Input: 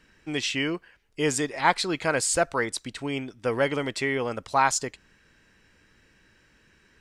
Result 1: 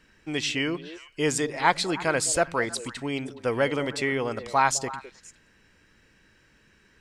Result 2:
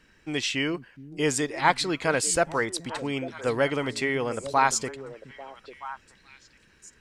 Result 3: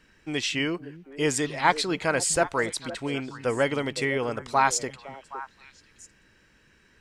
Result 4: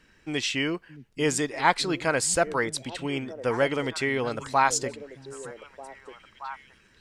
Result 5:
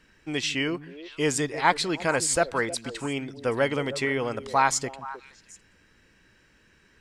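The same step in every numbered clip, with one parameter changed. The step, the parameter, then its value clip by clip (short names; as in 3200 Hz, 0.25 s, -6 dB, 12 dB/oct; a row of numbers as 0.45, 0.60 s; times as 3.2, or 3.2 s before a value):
delay with a stepping band-pass, time: 0.105, 0.423, 0.256, 0.621, 0.156 s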